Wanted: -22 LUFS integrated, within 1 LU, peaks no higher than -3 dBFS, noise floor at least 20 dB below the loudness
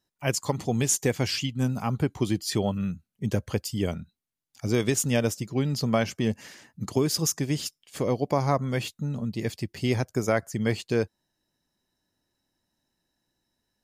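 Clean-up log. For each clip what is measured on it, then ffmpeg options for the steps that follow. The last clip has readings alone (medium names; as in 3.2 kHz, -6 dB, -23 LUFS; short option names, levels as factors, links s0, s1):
loudness -27.5 LUFS; peak level -10.0 dBFS; loudness target -22.0 LUFS
-> -af "volume=1.88"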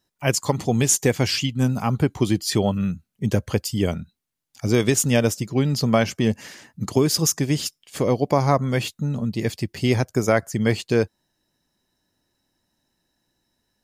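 loudness -22.0 LUFS; peak level -4.5 dBFS; noise floor -78 dBFS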